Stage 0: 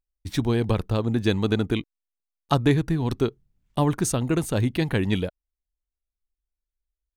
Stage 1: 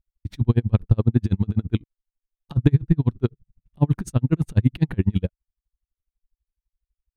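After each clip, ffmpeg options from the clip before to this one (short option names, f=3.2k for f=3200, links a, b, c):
-af "bass=f=250:g=14,treble=f=4k:g=-8,aeval=exprs='val(0)*pow(10,-39*(0.5-0.5*cos(2*PI*12*n/s))/20)':c=same"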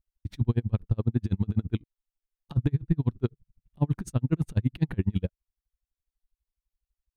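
-af "alimiter=limit=-8.5dB:level=0:latency=1:release=361,volume=-4dB"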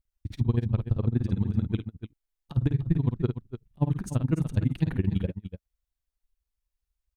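-af "aecho=1:1:52|295:0.398|0.282"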